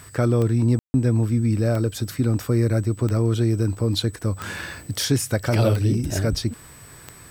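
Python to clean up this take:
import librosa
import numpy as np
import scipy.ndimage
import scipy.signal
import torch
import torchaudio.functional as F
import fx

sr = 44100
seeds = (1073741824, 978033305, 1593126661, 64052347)

y = fx.fix_declick_ar(x, sr, threshold=10.0)
y = fx.notch(y, sr, hz=8000.0, q=30.0)
y = fx.fix_ambience(y, sr, seeds[0], print_start_s=6.54, print_end_s=7.04, start_s=0.79, end_s=0.94)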